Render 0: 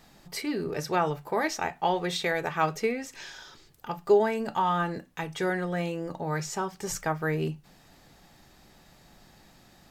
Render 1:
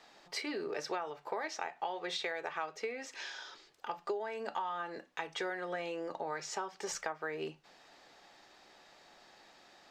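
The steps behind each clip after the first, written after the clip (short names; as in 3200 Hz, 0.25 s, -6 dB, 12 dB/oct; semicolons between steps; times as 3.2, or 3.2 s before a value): three-band isolator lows -23 dB, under 340 Hz, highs -20 dB, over 6700 Hz; compressor 10:1, threshold -34 dBFS, peak gain reduction 15.5 dB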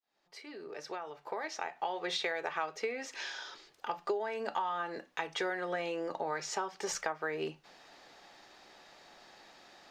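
opening faded in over 2.09 s; notch 7700 Hz, Q 18; gain +3 dB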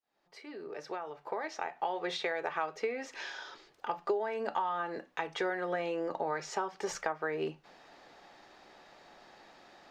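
high shelf 2600 Hz -8.5 dB; gain +2.5 dB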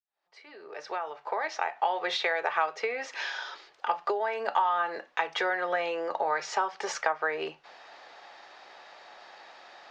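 opening faded in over 0.98 s; three-band isolator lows -18 dB, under 500 Hz, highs -24 dB, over 6900 Hz; gain +8 dB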